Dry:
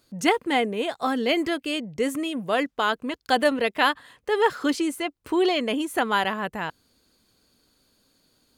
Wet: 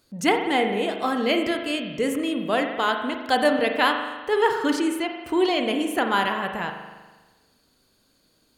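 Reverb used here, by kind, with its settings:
spring reverb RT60 1.3 s, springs 40 ms, chirp 50 ms, DRR 4.5 dB

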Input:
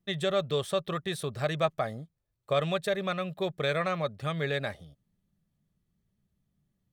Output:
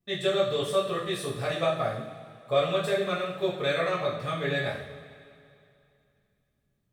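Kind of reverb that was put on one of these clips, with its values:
coupled-rooms reverb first 0.51 s, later 2.6 s, from −16 dB, DRR −7.5 dB
level −6 dB

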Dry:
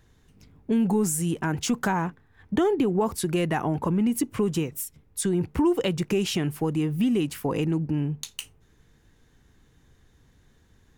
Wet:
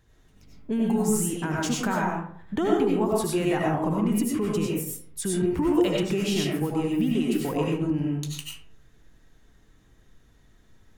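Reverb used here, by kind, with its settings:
comb and all-pass reverb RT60 0.57 s, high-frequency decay 0.5×, pre-delay 55 ms, DRR −3.5 dB
level −4 dB

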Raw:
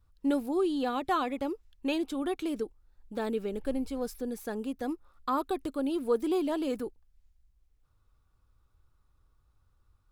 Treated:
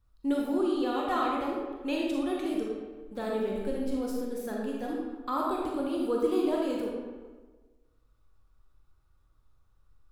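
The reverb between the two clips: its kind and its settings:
comb and all-pass reverb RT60 1.4 s, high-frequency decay 0.65×, pre-delay 0 ms, DRR −3 dB
level −3.5 dB

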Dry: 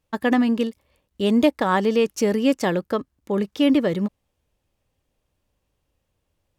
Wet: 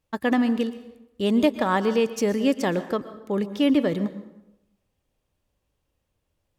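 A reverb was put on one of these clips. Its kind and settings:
dense smooth reverb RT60 0.89 s, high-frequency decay 0.65×, pre-delay 105 ms, DRR 13 dB
level −2.5 dB

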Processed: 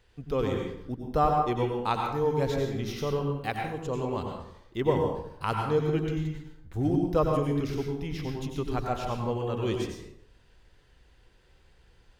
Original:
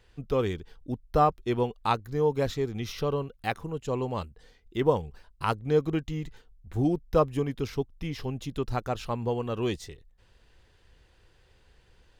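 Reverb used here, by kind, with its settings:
dense smooth reverb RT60 0.76 s, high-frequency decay 0.65×, pre-delay 80 ms, DRR 1 dB
level −2.5 dB

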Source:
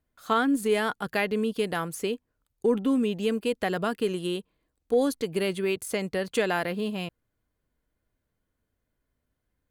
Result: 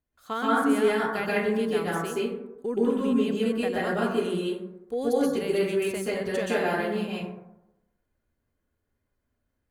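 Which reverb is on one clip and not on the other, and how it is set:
dense smooth reverb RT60 0.91 s, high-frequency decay 0.35×, pre-delay 115 ms, DRR −7.5 dB
level −7.5 dB

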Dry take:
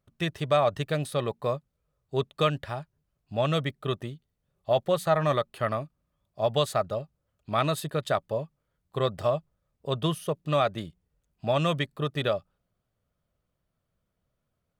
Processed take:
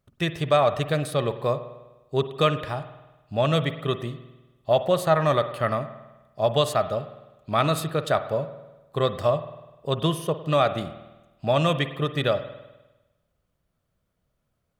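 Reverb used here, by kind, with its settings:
spring reverb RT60 1.1 s, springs 50 ms, chirp 55 ms, DRR 11 dB
level +3.5 dB

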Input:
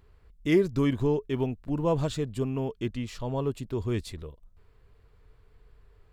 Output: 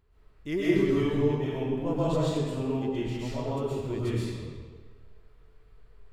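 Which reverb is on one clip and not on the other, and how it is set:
comb and all-pass reverb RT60 1.5 s, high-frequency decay 0.85×, pre-delay 90 ms, DRR −9.5 dB
level −9 dB

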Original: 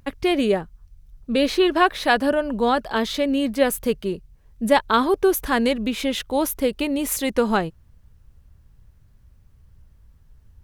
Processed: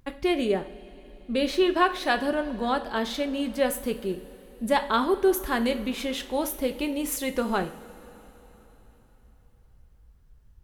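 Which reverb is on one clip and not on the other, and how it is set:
coupled-rooms reverb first 0.4 s, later 4.1 s, from −18 dB, DRR 7 dB
level −6 dB

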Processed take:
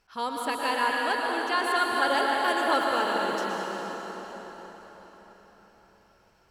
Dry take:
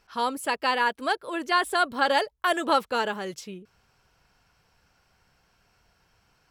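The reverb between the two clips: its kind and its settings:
dense smooth reverb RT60 4.9 s, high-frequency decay 0.8×, pre-delay 100 ms, DRR −2.5 dB
level −4.5 dB

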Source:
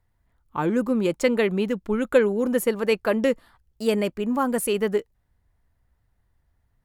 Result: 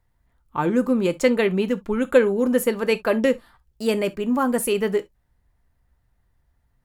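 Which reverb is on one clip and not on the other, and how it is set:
reverb whose tail is shaped and stops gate 90 ms falling, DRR 10 dB
level +1.5 dB

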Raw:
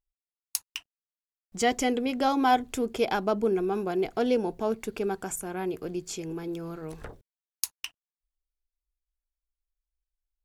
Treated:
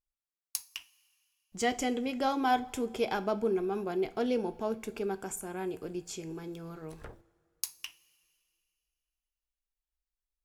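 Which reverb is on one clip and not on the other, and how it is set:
coupled-rooms reverb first 0.3 s, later 2.5 s, from −20 dB, DRR 10.5 dB
level −5 dB

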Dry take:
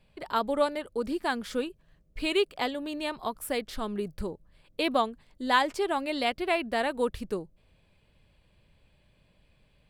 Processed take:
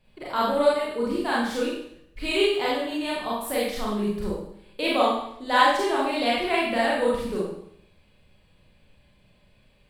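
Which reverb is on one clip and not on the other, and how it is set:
four-comb reverb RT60 0.7 s, combs from 30 ms, DRR −6.5 dB
level −2 dB

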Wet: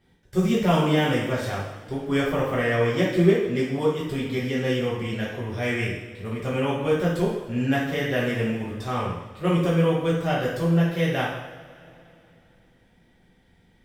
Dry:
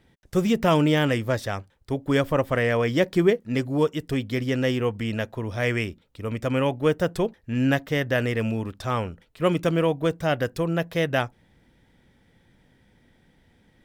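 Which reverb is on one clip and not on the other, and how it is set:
coupled-rooms reverb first 0.81 s, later 3.1 s, from −18 dB, DRR −7 dB
level −8 dB

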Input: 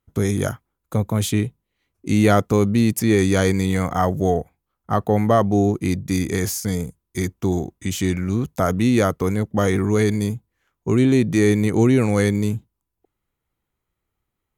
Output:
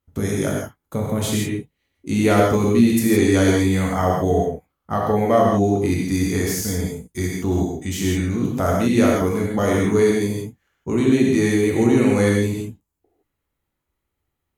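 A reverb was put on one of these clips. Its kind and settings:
reverb whose tail is shaped and stops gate 190 ms flat, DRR −3 dB
level −3.5 dB

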